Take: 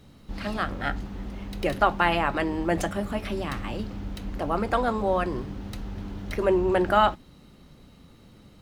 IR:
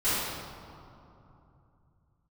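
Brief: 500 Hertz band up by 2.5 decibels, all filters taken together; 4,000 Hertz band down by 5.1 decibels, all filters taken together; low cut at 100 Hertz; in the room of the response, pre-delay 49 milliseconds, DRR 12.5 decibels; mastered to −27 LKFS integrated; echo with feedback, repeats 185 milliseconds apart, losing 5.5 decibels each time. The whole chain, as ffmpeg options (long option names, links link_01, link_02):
-filter_complex "[0:a]highpass=100,equalizer=frequency=500:width_type=o:gain=3.5,equalizer=frequency=4000:width_type=o:gain=-8,aecho=1:1:185|370|555|740|925|1110|1295:0.531|0.281|0.149|0.079|0.0419|0.0222|0.0118,asplit=2[link_01][link_02];[1:a]atrim=start_sample=2205,adelay=49[link_03];[link_02][link_03]afir=irnorm=-1:irlink=0,volume=-25.5dB[link_04];[link_01][link_04]amix=inputs=2:normalize=0,volume=-2.5dB"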